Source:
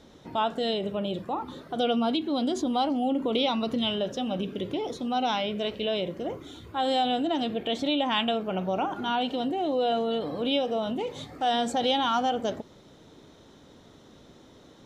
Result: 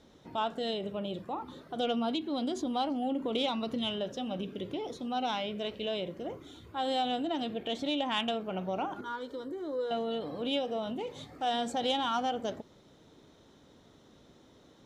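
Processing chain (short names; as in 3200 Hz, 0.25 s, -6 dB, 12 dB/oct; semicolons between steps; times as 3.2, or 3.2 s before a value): added harmonics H 3 -21 dB, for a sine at -13 dBFS; 9.01–9.91 fixed phaser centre 740 Hz, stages 6; gain -3.5 dB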